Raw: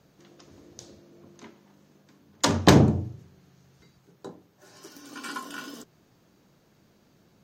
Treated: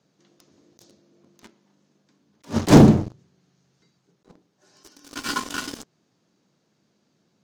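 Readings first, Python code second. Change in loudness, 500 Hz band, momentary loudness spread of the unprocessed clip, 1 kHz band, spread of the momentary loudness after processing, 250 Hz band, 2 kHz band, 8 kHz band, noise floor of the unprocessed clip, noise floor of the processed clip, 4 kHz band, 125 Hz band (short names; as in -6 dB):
+4.5 dB, +4.0 dB, 22 LU, +2.0 dB, 22 LU, +7.0 dB, +1.0 dB, 0.0 dB, -63 dBFS, -70 dBFS, -1.0 dB, +4.5 dB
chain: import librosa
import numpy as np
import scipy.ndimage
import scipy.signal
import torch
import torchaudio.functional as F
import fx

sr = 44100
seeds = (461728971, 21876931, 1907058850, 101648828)

y = fx.tracing_dist(x, sr, depth_ms=0.49)
y = fx.bandpass_edges(y, sr, low_hz=190.0, high_hz=6200.0)
y = fx.leveller(y, sr, passes=3)
y = fx.bass_treble(y, sr, bass_db=6, treble_db=8)
y = fx.attack_slew(y, sr, db_per_s=300.0)
y = F.gain(torch.from_numpy(y), -1.5).numpy()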